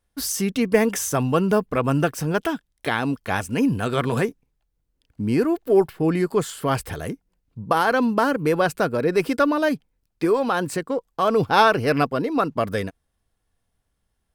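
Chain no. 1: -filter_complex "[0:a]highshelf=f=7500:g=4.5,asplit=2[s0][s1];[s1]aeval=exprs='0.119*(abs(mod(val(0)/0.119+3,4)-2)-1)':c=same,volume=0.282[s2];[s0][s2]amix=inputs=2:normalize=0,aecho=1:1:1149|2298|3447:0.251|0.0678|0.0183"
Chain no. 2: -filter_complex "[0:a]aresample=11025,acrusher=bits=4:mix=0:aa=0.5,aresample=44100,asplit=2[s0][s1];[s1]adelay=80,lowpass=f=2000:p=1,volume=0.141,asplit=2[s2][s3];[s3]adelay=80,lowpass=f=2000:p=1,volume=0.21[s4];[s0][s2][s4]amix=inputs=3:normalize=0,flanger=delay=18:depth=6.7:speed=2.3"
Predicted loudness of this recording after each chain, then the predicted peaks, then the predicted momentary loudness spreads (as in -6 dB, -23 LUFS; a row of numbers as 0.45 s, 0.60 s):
-20.5 LUFS, -25.0 LUFS; -2.0 dBFS, -6.5 dBFS; 14 LU, 10 LU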